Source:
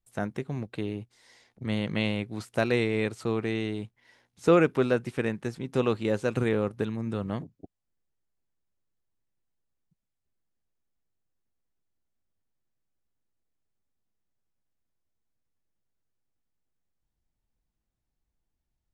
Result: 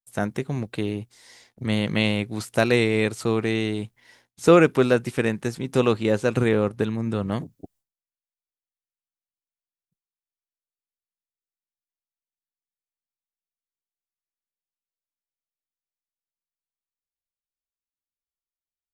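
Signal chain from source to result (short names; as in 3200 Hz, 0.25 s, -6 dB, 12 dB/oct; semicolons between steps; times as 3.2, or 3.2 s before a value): expander -59 dBFS; high shelf 5500 Hz +8.5 dB, from 5.92 s +2.5 dB, from 7.32 s +11.5 dB; gain +5.5 dB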